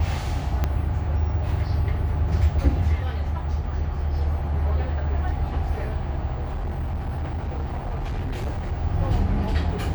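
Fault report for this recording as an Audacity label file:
0.640000	0.640000	pop -11 dBFS
6.330000	8.730000	clipped -24 dBFS

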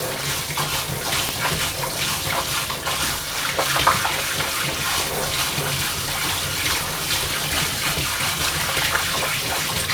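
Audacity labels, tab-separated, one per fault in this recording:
1.290000	1.290000	pop
5.740000	6.590000	clipped -18.5 dBFS
8.960000	9.640000	clipped -18 dBFS

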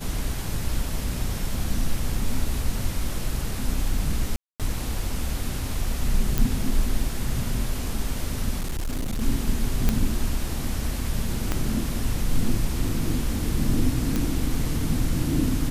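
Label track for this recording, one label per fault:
4.360000	4.600000	gap 0.237 s
6.380000	6.380000	pop
8.590000	9.220000	clipped -23.5 dBFS
9.890000	9.890000	pop -7 dBFS
11.520000	11.520000	pop -9 dBFS
14.160000	14.160000	pop

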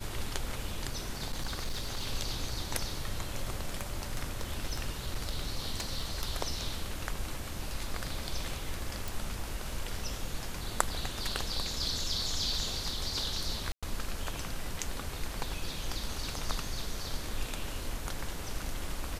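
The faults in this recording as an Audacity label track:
1.320000	2.070000	clipped -29.5 dBFS
3.740000	6.230000	clipped -26.5 dBFS
9.080000	9.080000	pop
13.720000	13.830000	gap 0.106 s

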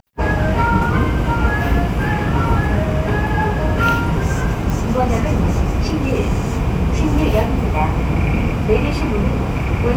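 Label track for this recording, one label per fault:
4.700000	4.700000	pop

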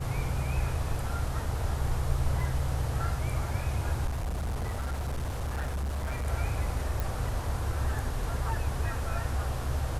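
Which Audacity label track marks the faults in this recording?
2.400000	2.400000	gap 2.5 ms
4.060000	6.280000	clipped -28.5 dBFS
7.000000	7.000000	pop

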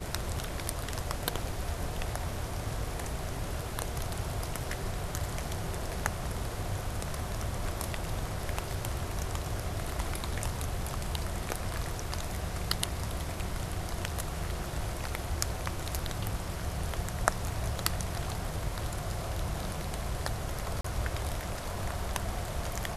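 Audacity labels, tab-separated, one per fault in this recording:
20.810000	20.840000	gap 34 ms

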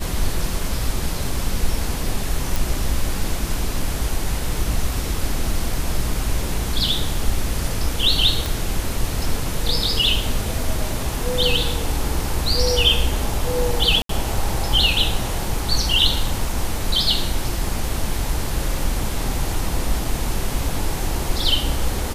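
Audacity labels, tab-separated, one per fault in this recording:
2.560000	2.560000	pop
8.460000	8.460000	pop
14.020000	14.090000	gap 73 ms

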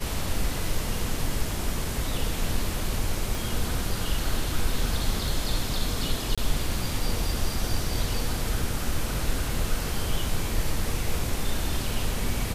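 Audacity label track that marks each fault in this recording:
3.350000	3.350000	pop
6.350000	6.380000	gap 26 ms

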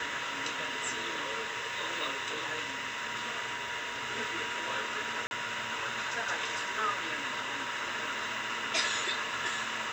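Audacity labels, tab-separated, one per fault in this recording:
5.270000	5.310000	gap 41 ms

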